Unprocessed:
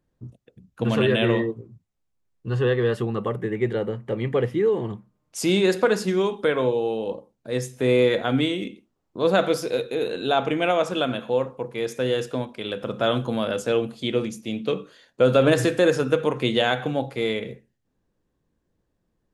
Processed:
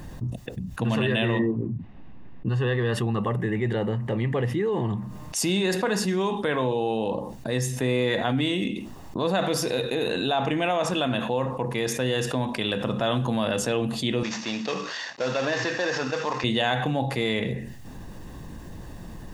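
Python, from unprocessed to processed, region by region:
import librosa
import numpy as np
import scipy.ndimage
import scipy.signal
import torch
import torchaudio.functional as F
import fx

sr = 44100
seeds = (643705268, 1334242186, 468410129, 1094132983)

y = fx.chain(x, sr, fx.lowpass(hz=2900.0, slope=24),
    fx.peak_eq(hz=260.0, db=10.5, octaves=1.6), at=(1.39, 2.49))
y = fx.chain(y, sr, fx.cvsd(bps=32000),
    fx.highpass(hz=1100.0, slope=6),
    fx.peak_eq(hz=3400.0, db=-5.0, octaves=0.96), at=(14.23, 16.44))
y = y + 0.41 * np.pad(y, (int(1.1 * sr / 1000.0), 0))[:len(y)]
y = fx.env_flatten(y, sr, amount_pct=70)
y = y * librosa.db_to_amplitude(-7.0)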